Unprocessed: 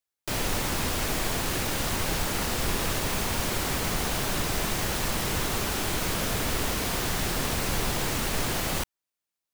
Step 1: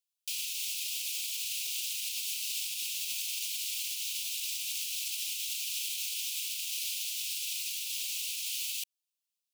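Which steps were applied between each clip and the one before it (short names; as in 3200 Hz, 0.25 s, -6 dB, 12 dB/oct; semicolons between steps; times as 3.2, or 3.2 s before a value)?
limiter -20.5 dBFS, peak gain reduction 6 dB; steep high-pass 2500 Hz 72 dB/oct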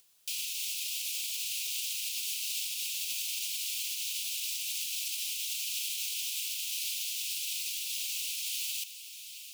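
on a send: diffused feedback echo 0.74 s, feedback 46%, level -11.5 dB; on the sum: upward compressor, threshold -47 dBFS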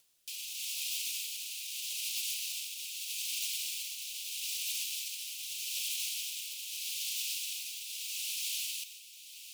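rotary speaker horn 0.8 Hz; reverb RT60 0.45 s, pre-delay 95 ms, DRR 12 dB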